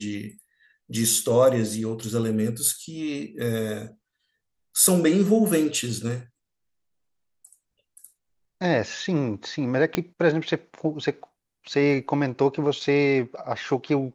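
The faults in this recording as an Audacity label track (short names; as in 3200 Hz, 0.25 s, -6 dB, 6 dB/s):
9.950000	9.950000	pop -8 dBFS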